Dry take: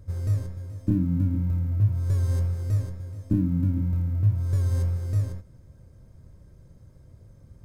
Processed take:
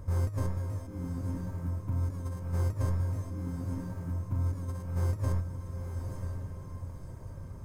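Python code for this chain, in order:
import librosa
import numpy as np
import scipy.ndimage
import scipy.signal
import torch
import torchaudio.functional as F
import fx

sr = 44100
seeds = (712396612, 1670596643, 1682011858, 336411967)

y = fx.graphic_eq_15(x, sr, hz=(100, 1000, 4000), db=(-4, 10, -5))
y = fx.over_compress(y, sr, threshold_db=-31.0, ratio=-0.5)
y = fx.echo_diffused(y, sr, ms=953, feedback_pct=41, wet_db=-6)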